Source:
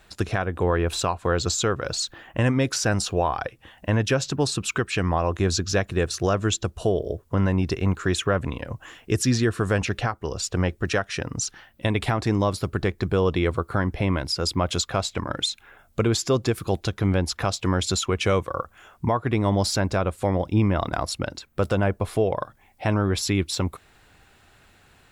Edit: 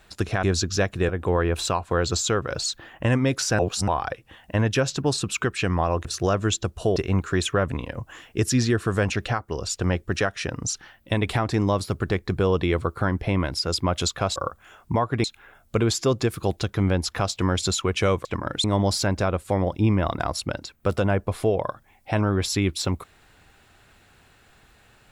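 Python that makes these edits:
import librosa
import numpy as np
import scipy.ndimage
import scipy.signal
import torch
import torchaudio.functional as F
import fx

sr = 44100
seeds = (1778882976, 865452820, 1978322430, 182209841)

y = fx.edit(x, sr, fx.reverse_span(start_s=2.93, length_s=0.29),
    fx.move(start_s=5.39, length_s=0.66, to_s=0.43),
    fx.cut(start_s=6.96, length_s=0.73),
    fx.swap(start_s=15.09, length_s=0.39, other_s=18.49, other_length_s=0.88), tone=tone)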